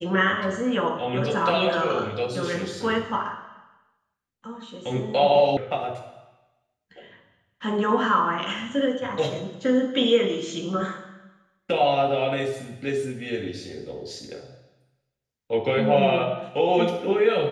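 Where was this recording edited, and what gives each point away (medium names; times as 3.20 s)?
5.57 s: sound stops dead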